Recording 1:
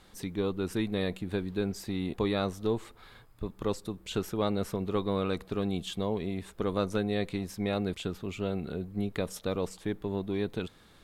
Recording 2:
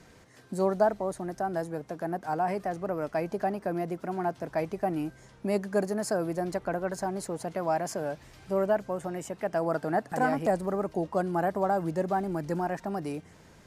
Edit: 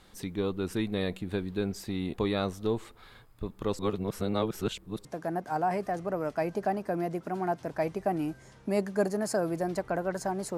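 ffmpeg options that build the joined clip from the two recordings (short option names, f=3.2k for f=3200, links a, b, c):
-filter_complex "[0:a]apad=whole_dur=10.57,atrim=end=10.57,asplit=2[a][b];[a]atrim=end=3.792[c];[b]atrim=start=3.788:end=5.052,asetpts=PTS-STARTPTS,areverse[d];[1:a]atrim=start=1.818:end=7.34[e];[c][d]acrossfade=d=0.004:c1=hsin:c2=hsin[f];[f][e]acrossfade=d=0.004:c1=hsin:c2=hsin"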